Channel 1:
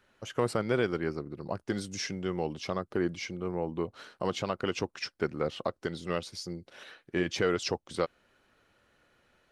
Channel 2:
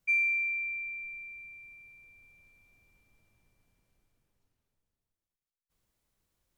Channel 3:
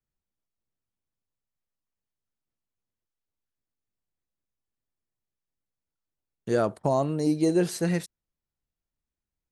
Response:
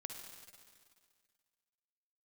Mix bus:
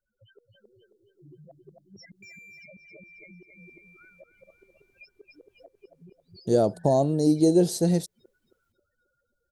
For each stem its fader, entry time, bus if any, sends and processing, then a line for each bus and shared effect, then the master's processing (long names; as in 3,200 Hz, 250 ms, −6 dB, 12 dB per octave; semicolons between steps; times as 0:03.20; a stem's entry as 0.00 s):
−1.0 dB, 0.00 s, bus A, no send, echo send −12 dB, spectral peaks only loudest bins 1; gate with flip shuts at −39 dBFS, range −32 dB
−11.0 dB, 2.15 s, bus A, no send, no echo send, downward compressor 2 to 1, threshold −46 dBFS, peak gain reduction 11.5 dB; hard clipping −37.5 dBFS, distortion −17 dB
−4.0 dB, 0.00 s, no bus, no send, no echo send, flat-topped bell 1,700 Hz −15.5 dB
bus A: 0.0 dB, downward compressor 6 to 1, threshold −56 dBFS, peak gain reduction 13 dB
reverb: not used
echo: repeating echo 269 ms, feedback 43%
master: automatic gain control gain up to 7.5 dB